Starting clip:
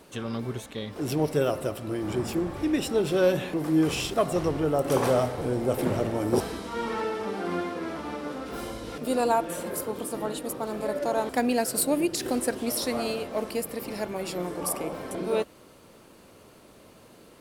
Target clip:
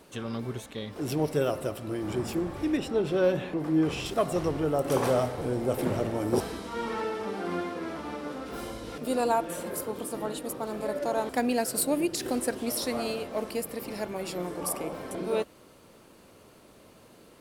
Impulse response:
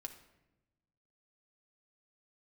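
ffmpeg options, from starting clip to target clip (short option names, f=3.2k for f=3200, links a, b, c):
-filter_complex "[0:a]asettb=1/sr,asplit=3[a][b][c];[a]atrim=end=2.774[d];[b]atrim=start=2.77:end=4.06,asetpts=PTS-STARTPTS,afade=t=in:d=0.004:c=qsin,afade=t=out:st=1.286:d=0.004:c=qsin,lowpass=f=2.9k:p=1[e];[c]atrim=start=4.056[f];[d][e]acrossfade=d=0.004:c1=hsin:c2=qsin[g];[g][f]acrossfade=d=0.004:c1=qsin:c2=hsin,volume=-2dB"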